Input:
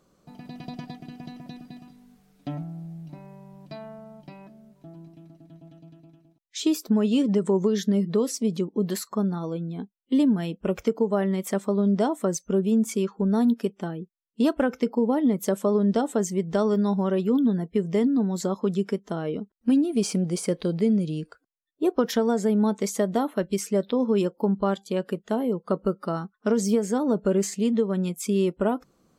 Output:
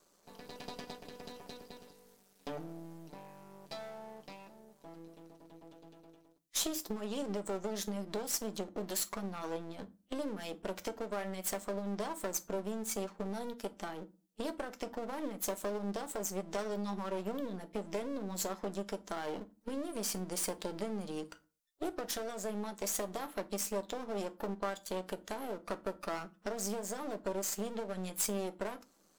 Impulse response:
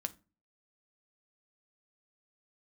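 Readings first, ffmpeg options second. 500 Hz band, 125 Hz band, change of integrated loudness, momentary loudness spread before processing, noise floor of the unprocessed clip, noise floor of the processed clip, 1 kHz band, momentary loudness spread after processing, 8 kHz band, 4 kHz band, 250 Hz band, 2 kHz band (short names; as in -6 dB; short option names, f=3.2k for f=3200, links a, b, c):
-13.5 dB, -18.0 dB, -14.0 dB, 16 LU, -69 dBFS, -69 dBFS, -8.5 dB, 16 LU, -2.5 dB, -5.5 dB, -18.5 dB, -6.5 dB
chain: -filter_complex "[0:a]acompressor=threshold=-28dB:ratio=6,aeval=exprs='max(val(0),0)':c=same,bass=f=250:g=-12,treble=f=4k:g=8[a];[1:a]atrim=start_sample=2205[b];[a][b]afir=irnorm=-1:irlink=0,volume=1dB"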